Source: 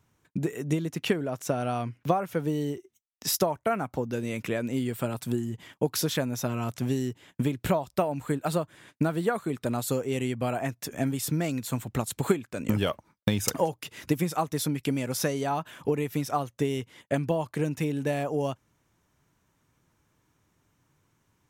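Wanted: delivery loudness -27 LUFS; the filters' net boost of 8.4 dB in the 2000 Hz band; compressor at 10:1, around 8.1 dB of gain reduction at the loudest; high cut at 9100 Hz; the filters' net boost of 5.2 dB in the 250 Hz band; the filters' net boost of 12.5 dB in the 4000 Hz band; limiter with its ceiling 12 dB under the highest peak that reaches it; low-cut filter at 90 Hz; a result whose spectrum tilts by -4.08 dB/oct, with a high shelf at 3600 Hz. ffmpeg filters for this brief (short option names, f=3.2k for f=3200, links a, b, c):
-af "highpass=90,lowpass=9.1k,equalizer=f=250:t=o:g=6.5,equalizer=f=2k:t=o:g=5.5,highshelf=f=3.6k:g=9,equalizer=f=4k:t=o:g=8.5,acompressor=threshold=-23dB:ratio=10,volume=3.5dB,alimiter=limit=-14.5dB:level=0:latency=1"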